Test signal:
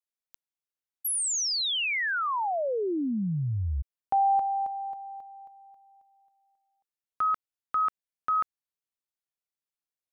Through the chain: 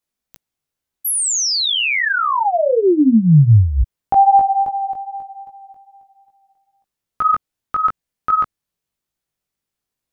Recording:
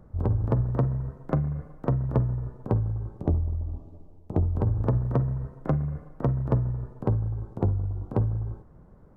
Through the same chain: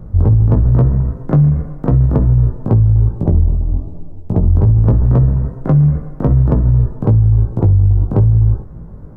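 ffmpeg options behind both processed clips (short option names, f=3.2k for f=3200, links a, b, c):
-af "lowshelf=f=330:g=10.5,flanger=delay=17.5:depth=2.7:speed=2.5,alimiter=level_in=16dB:limit=-1dB:release=50:level=0:latency=1,volume=-3dB"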